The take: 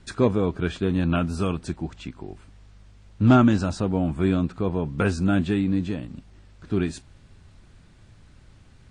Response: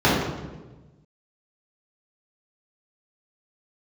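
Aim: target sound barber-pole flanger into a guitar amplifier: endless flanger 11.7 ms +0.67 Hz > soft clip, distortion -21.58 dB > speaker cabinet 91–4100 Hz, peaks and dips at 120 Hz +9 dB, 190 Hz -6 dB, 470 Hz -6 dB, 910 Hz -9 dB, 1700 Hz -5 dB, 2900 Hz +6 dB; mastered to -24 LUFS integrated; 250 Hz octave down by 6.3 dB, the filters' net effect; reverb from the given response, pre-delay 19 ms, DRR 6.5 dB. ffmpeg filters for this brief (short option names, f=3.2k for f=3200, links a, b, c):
-filter_complex "[0:a]equalizer=f=250:t=o:g=-5.5,asplit=2[a][b];[1:a]atrim=start_sample=2205,adelay=19[c];[b][c]afir=irnorm=-1:irlink=0,volume=-29dB[d];[a][d]amix=inputs=2:normalize=0,asplit=2[e][f];[f]adelay=11.7,afreqshift=0.67[g];[e][g]amix=inputs=2:normalize=1,asoftclip=threshold=-14dB,highpass=91,equalizer=f=120:t=q:w=4:g=9,equalizer=f=190:t=q:w=4:g=-6,equalizer=f=470:t=q:w=4:g=-6,equalizer=f=910:t=q:w=4:g=-9,equalizer=f=1.7k:t=q:w=4:g=-5,equalizer=f=2.9k:t=q:w=4:g=6,lowpass=f=4.1k:w=0.5412,lowpass=f=4.1k:w=1.3066,volume=4.5dB"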